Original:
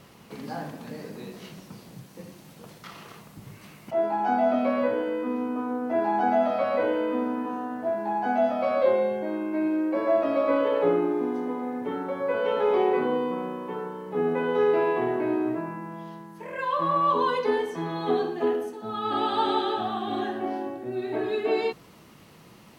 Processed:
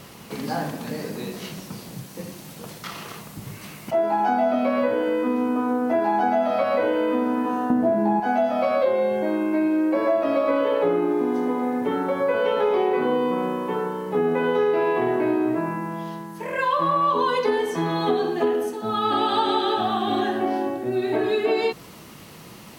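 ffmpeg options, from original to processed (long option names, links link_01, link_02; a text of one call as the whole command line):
ffmpeg -i in.wav -filter_complex "[0:a]asettb=1/sr,asplit=3[link_01][link_02][link_03];[link_01]atrim=end=7.704[link_04];[link_02]atrim=start=7.7:end=8.2,asetpts=PTS-STARTPTS,afade=type=in:duration=0.004:curve=qsin,afade=type=out:start_time=0.496:duration=0.004:curve=qsin,equalizer=frequency=180:width=0.39:gain=15[link_05];[link_03]atrim=start=8.196[link_06];[link_04][link_05]acrossfade=duration=0.004:curve1=hsin:curve2=qsin[link_07];[link_07][link_06]acrossfade=duration=0.004:curve1=qsin:curve2=hsin,highshelf=frequency=4400:gain=5.5,acompressor=threshold=-26dB:ratio=4,volume=7.5dB" out.wav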